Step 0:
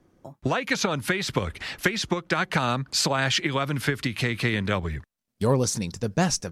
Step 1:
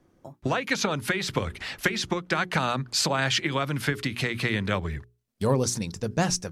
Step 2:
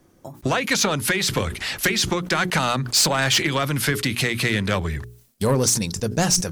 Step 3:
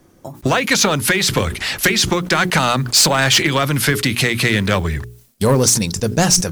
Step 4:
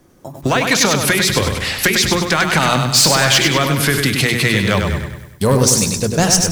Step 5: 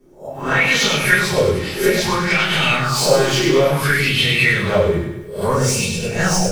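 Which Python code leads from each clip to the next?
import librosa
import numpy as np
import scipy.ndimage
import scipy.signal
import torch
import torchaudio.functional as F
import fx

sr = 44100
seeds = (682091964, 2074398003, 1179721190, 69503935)

y1 = fx.hum_notches(x, sr, base_hz=60, count=7)
y1 = F.gain(torch.from_numpy(y1), -1.0).numpy()
y2 = fx.high_shelf(y1, sr, hz=5600.0, db=11.5)
y2 = 10.0 ** (-17.5 / 20.0) * np.tanh(y2 / 10.0 ** (-17.5 / 20.0))
y2 = fx.sustainer(y2, sr, db_per_s=110.0)
y2 = F.gain(torch.from_numpy(y2), 5.5).numpy()
y3 = fx.mod_noise(y2, sr, seeds[0], snr_db=32)
y3 = F.gain(torch.from_numpy(y3), 5.5).numpy()
y4 = fx.echo_feedback(y3, sr, ms=99, feedback_pct=49, wet_db=-5.5)
y5 = fx.spec_swells(y4, sr, rise_s=0.38)
y5 = fx.room_shoebox(y5, sr, seeds[1], volume_m3=44.0, walls='mixed', distance_m=1.6)
y5 = fx.bell_lfo(y5, sr, hz=0.59, low_hz=320.0, high_hz=3200.0, db=15)
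y5 = F.gain(torch.from_numpy(y5), -17.5).numpy()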